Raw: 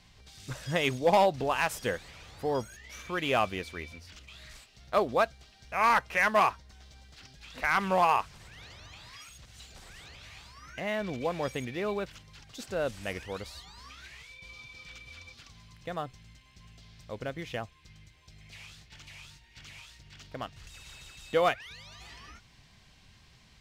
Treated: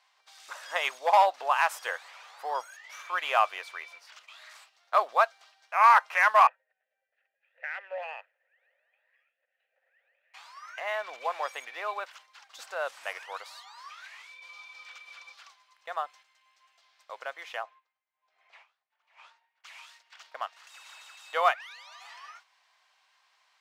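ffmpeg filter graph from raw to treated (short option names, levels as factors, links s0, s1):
-filter_complex "[0:a]asettb=1/sr,asplit=3[s0][s1][s2];[s0]atrim=end=6.474[s3];[s1]atrim=start=6.47:end=10.34,asetpts=PTS-STARTPTS,afade=t=in:d=0.004:c=qsin,afade=t=out:st=3.866:d=0.004:c=qsin,adynamicsmooth=sensitivity=4.5:basefreq=1600,asplit=3[s4][s5][s6];[s4]bandpass=f=530:t=q:w=8,volume=1[s7];[s5]bandpass=f=1840:t=q:w=8,volume=0.501[s8];[s6]bandpass=f=2480:t=q:w=8,volume=0.355[s9];[s7][s8][s9]amix=inputs=3:normalize=0,equalizer=f=2100:t=o:w=1.2:g=4[s10];[s2]atrim=start=10.336[s11];[s3][s10]acrossfade=d=0.004:c1=hsin:c2=qsin[s12];[s12][s11]acrossfade=d=0.004:c1=qsin:c2=hsin,asettb=1/sr,asplit=3[s13][s14][s15];[s13]atrim=end=17.634[s16];[s14]atrim=start=17.63:end=19.64,asetpts=PTS-STARTPTS,afade=t=in:d=0.004:c=qsin,afade=t=out:st=2.006:d=0.004:c=qsin,acontrast=55,bandpass=f=460:t=q:w=0.54,aeval=exprs='val(0)*pow(10,-23*(0.5-0.5*cos(2*PI*1.2*n/s))/20)':c=same[s17];[s15]atrim=start=19.636[s18];[s16][s17]acrossfade=d=0.004:c1=hsin:c2=qsin[s19];[s19][s18]acrossfade=d=0.004:c1=qsin:c2=hsin,highpass=f=640:w=0.5412,highpass=f=640:w=1.3066,agate=range=0.447:threshold=0.00141:ratio=16:detection=peak,equalizer=f=1100:w=0.85:g=9.5,volume=0.75"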